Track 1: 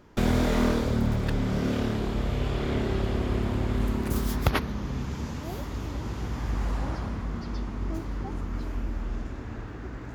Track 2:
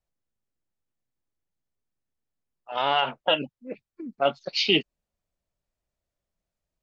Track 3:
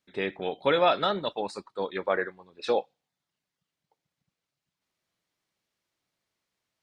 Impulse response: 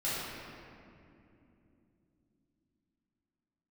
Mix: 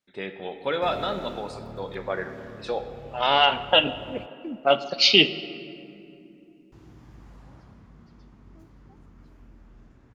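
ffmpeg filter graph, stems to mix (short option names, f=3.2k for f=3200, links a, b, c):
-filter_complex "[0:a]equalizer=f=140:t=o:w=0.77:g=6.5,adelay=650,volume=-19dB,asplit=3[a][b][c];[a]atrim=end=4.26,asetpts=PTS-STARTPTS,afade=t=out:st=4.256:d=0.004:c=hsin[d];[b]atrim=start=4.26:end=6.72,asetpts=PTS-STARTPTS,volume=0[e];[c]atrim=start=6.72,asetpts=PTS-STARTPTS,afade=t=in:d=0.004:c=hsin[f];[d][e][f]concat=n=3:v=0:a=1[g];[1:a]adynamicequalizer=threshold=0.0126:dfrequency=2800:dqfactor=0.7:tfrequency=2800:tqfactor=0.7:attack=5:release=100:ratio=0.375:range=3:mode=boostabove:tftype=highshelf,adelay=450,volume=2.5dB,asplit=2[h][i];[i]volume=-19dB[j];[2:a]acontrast=21,volume=-9dB,asplit=2[k][l];[l]volume=-13.5dB[m];[3:a]atrim=start_sample=2205[n];[j][m]amix=inputs=2:normalize=0[o];[o][n]afir=irnorm=-1:irlink=0[p];[g][h][k][p]amix=inputs=4:normalize=0,equalizer=f=64:w=1.7:g=-4"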